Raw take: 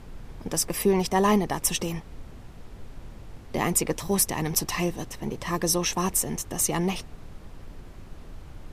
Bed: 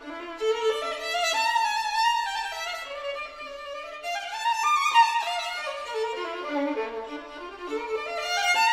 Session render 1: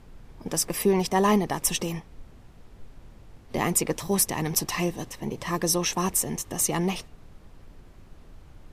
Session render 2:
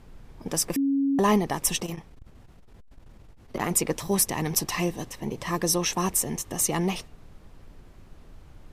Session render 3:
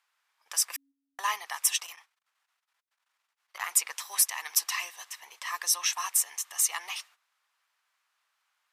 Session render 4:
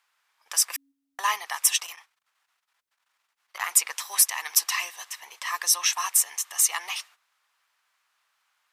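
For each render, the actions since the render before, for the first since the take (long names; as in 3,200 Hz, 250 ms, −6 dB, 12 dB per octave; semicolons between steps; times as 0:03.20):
noise reduction from a noise print 6 dB
0:00.76–0:01.19: beep over 276 Hz −20.5 dBFS; 0:01.80–0:03.71: saturating transformer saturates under 650 Hz
high-pass filter 1,100 Hz 24 dB per octave; noise gate −54 dBFS, range −12 dB
level +4.5 dB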